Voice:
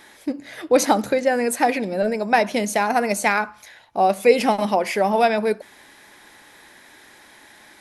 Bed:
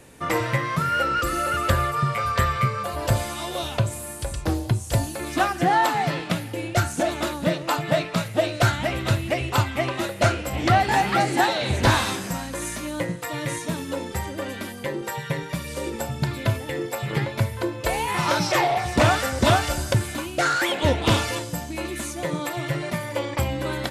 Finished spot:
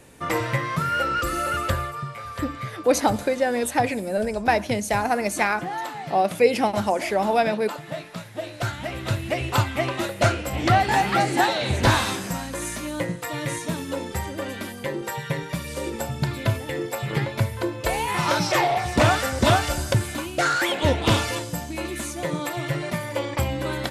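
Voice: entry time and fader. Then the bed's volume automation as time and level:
2.15 s, −3.0 dB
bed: 0:01.57 −1 dB
0:02.14 −11 dB
0:08.33 −11 dB
0:09.47 0 dB

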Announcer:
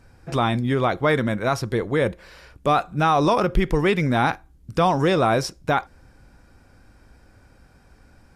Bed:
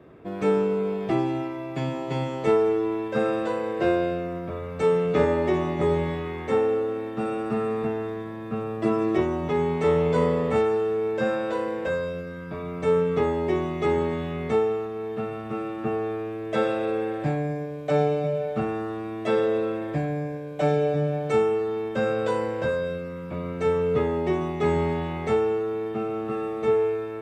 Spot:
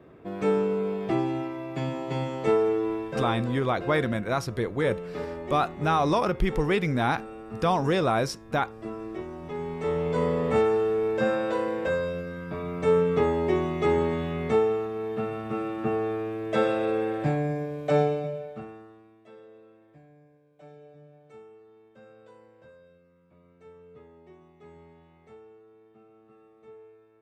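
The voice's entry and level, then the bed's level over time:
2.85 s, −5.0 dB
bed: 0:02.92 −2 dB
0:03.68 −13 dB
0:09.24 −13 dB
0:10.60 0 dB
0:17.98 0 dB
0:19.30 −27.5 dB

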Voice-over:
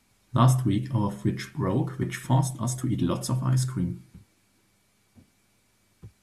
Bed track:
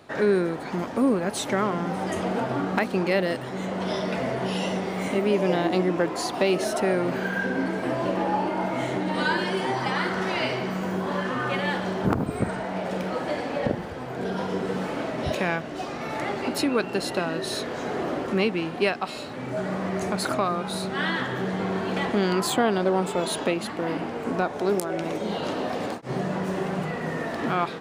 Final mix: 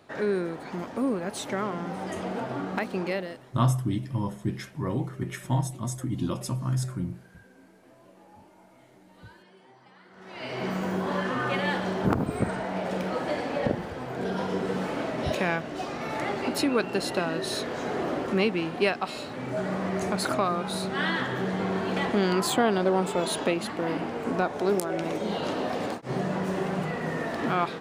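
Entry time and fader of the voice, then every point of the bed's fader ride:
3.20 s, −3.5 dB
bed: 0:03.10 −5.5 dB
0:03.79 −29 dB
0:10.05 −29 dB
0:10.65 −1 dB

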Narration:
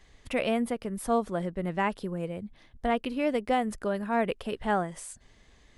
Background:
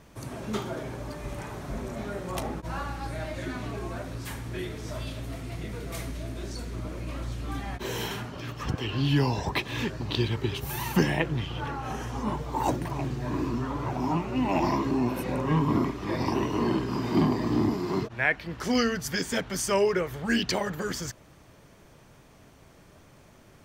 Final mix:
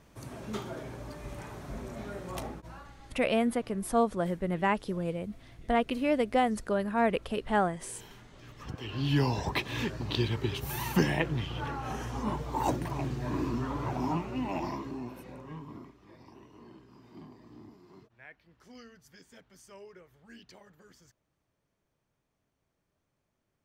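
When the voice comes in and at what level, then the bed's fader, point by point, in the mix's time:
2.85 s, +0.5 dB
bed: 0:02.44 −5.5 dB
0:02.96 −19 dB
0:08.21 −19 dB
0:09.18 −2.5 dB
0:14.01 −2.5 dB
0:16.23 −26.5 dB

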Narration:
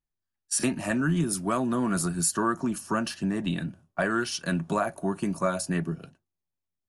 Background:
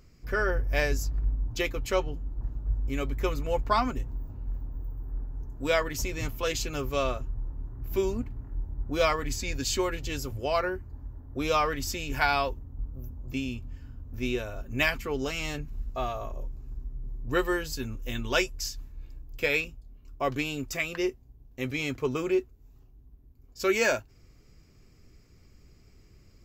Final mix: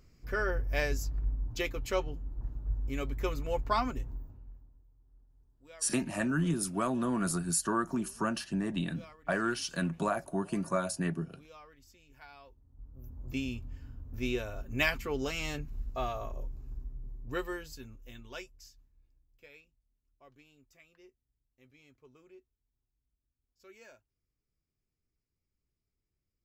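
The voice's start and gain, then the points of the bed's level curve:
5.30 s, −4.5 dB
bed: 0:04.13 −4.5 dB
0:04.87 −28 dB
0:12.40 −28 dB
0:13.22 −3 dB
0:16.75 −3 dB
0:19.64 −30.5 dB

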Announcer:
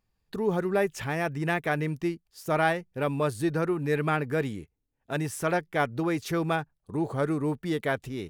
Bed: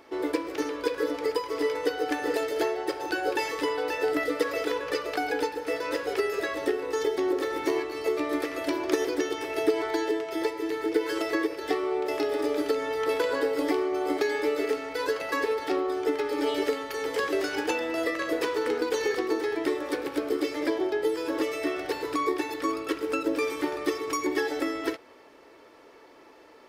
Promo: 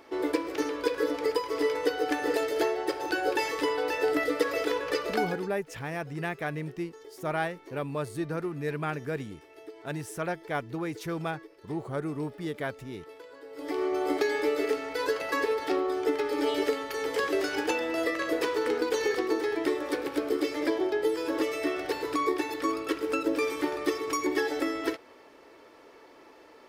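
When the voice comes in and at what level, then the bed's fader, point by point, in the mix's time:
4.75 s, −5.5 dB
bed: 0:05.22 0 dB
0:05.55 −21.5 dB
0:13.43 −21.5 dB
0:13.84 −0.5 dB

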